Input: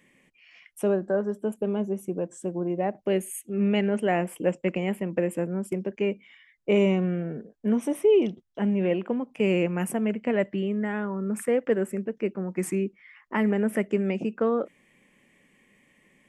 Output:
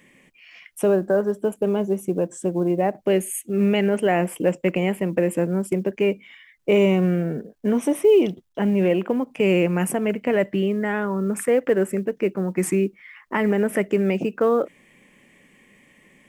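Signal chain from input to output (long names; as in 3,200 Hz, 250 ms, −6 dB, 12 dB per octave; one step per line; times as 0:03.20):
dynamic equaliser 220 Hz, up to −7 dB, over −41 dBFS, Q 7.2
in parallel at +2 dB: brickwall limiter −19.5 dBFS, peak gain reduction 7.5 dB
on the sum: log-companded quantiser 8 bits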